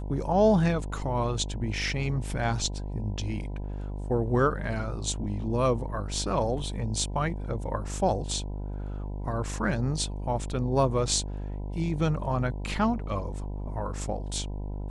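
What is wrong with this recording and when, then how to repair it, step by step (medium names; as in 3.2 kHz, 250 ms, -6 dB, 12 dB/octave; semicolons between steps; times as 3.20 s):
buzz 50 Hz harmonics 20 -34 dBFS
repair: de-hum 50 Hz, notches 20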